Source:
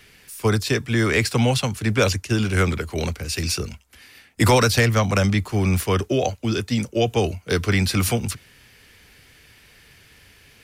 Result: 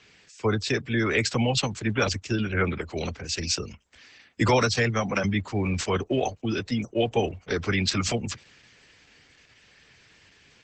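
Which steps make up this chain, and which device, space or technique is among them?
4.46–5.23 HPF 53 Hz -> 160 Hz 24 dB/oct; noise-suppressed video call (HPF 130 Hz 6 dB/oct; spectral gate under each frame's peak -25 dB strong; gain -3 dB; Opus 12 kbps 48000 Hz)

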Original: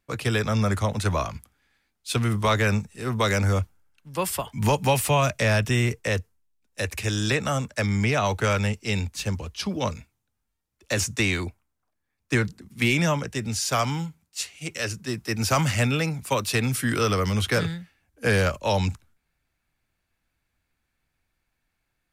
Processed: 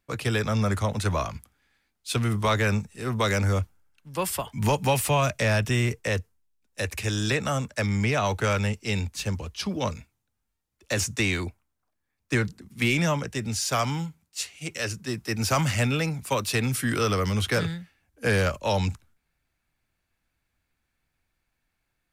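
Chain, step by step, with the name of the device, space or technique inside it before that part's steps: parallel distortion (in parallel at -13 dB: hard clip -24.5 dBFS, distortion -8 dB); on the sum: gain -2.5 dB

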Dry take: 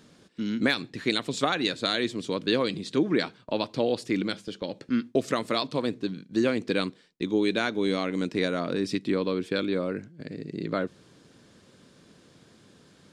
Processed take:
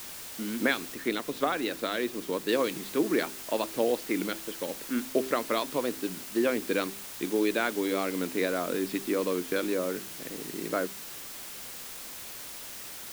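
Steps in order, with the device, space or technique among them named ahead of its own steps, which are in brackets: wax cylinder (BPF 270–2800 Hz; wow and flutter; white noise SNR 11 dB); 0.94–2.49 de-esser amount 70%; de-hum 65.29 Hz, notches 6

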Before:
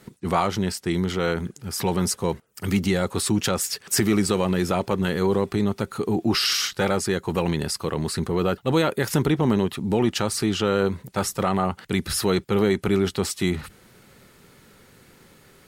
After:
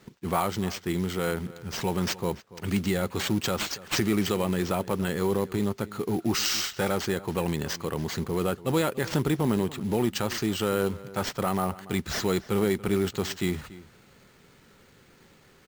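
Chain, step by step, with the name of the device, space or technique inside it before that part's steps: early companding sampler (sample-rate reducer 11000 Hz, jitter 0%; companded quantiser 6-bit); outdoor echo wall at 49 m, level -18 dB; gain -4.5 dB

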